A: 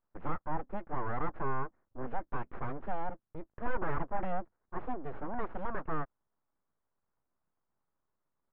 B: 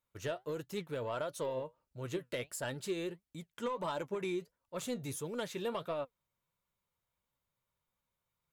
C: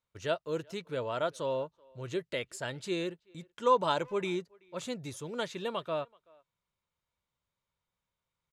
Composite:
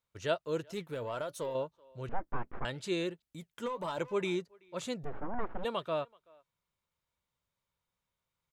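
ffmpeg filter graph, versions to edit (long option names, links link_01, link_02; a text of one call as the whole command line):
ffmpeg -i take0.wav -i take1.wav -i take2.wav -filter_complex "[1:a]asplit=2[link_01][link_02];[0:a]asplit=2[link_03][link_04];[2:a]asplit=5[link_05][link_06][link_07][link_08][link_09];[link_05]atrim=end=0.732[link_10];[link_01]atrim=start=0.728:end=1.552[link_11];[link_06]atrim=start=1.548:end=2.092[link_12];[link_03]atrim=start=2.088:end=2.652[link_13];[link_07]atrim=start=2.648:end=3.222[link_14];[link_02]atrim=start=3.218:end=3.982[link_15];[link_08]atrim=start=3.978:end=5.05[link_16];[link_04]atrim=start=5.03:end=5.65[link_17];[link_09]atrim=start=5.63[link_18];[link_10][link_11]acrossfade=duration=0.004:curve1=hsin:curve2=hsin[link_19];[link_19][link_12]acrossfade=duration=0.004:curve1=hsin:curve2=hsin[link_20];[link_20][link_13]acrossfade=duration=0.004:curve1=hsin:curve2=hsin[link_21];[link_21][link_14]acrossfade=duration=0.004:curve1=hsin:curve2=hsin[link_22];[link_22][link_15]acrossfade=duration=0.004:curve1=hsin:curve2=hsin[link_23];[link_23][link_16]acrossfade=duration=0.004:curve1=hsin:curve2=hsin[link_24];[link_24][link_17]acrossfade=duration=0.02:curve1=tri:curve2=tri[link_25];[link_25][link_18]acrossfade=duration=0.02:curve1=tri:curve2=tri" out.wav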